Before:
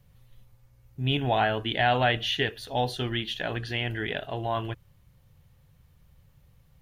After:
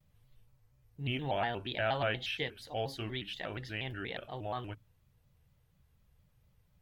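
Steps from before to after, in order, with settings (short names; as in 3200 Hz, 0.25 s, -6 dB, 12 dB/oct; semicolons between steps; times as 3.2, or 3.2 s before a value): notches 50/100/150/200/250 Hz; shaped vibrato square 4.2 Hz, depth 160 cents; gain -9 dB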